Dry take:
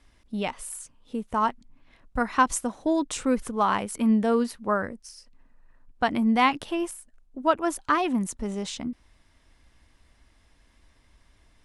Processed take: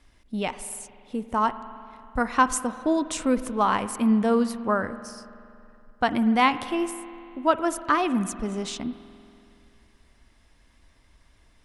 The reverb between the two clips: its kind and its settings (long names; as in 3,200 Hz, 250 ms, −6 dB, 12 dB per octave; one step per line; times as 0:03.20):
spring reverb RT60 2.7 s, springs 47 ms, chirp 65 ms, DRR 13 dB
level +1 dB